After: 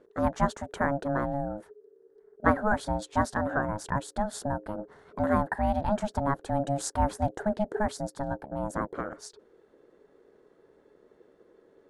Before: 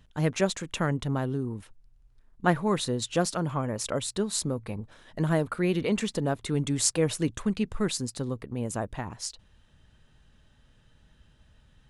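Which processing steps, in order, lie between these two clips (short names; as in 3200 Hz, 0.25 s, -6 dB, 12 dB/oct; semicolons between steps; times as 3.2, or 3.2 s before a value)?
resonant high shelf 1600 Hz -9 dB, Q 3; ring modulator 420 Hz; gain +2 dB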